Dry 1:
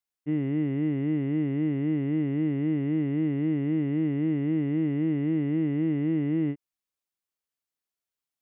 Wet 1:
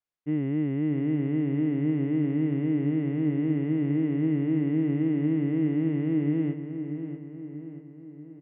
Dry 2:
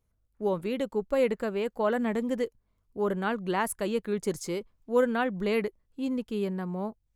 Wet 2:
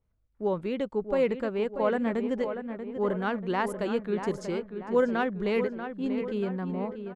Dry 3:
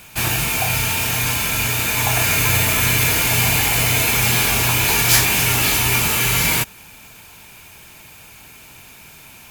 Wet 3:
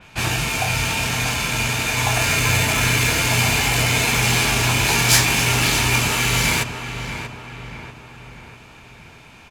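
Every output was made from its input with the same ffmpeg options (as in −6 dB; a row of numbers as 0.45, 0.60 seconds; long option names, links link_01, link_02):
-filter_complex "[0:a]adynamicsmooth=sensitivity=1:basefreq=4700,asplit=2[link_01][link_02];[link_02]adelay=637,lowpass=frequency=2700:poles=1,volume=-8.5dB,asplit=2[link_03][link_04];[link_04]adelay=637,lowpass=frequency=2700:poles=1,volume=0.53,asplit=2[link_05][link_06];[link_06]adelay=637,lowpass=frequency=2700:poles=1,volume=0.53,asplit=2[link_07][link_08];[link_08]adelay=637,lowpass=frequency=2700:poles=1,volume=0.53,asplit=2[link_09][link_10];[link_10]adelay=637,lowpass=frequency=2700:poles=1,volume=0.53,asplit=2[link_11][link_12];[link_12]adelay=637,lowpass=frequency=2700:poles=1,volume=0.53[link_13];[link_01][link_03][link_05][link_07][link_09][link_11][link_13]amix=inputs=7:normalize=0,adynamicequalizer=threshold=0.0158:dfrequency=4500:dqfactor=0.7:tfrequency=4500:tqfactor=0.7:attack=5:release=100:ratio=0.375:range=2.5:mode=boostabove:tftype=highshelf"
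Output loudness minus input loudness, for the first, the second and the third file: +0.5, +0.5, −2.0 LU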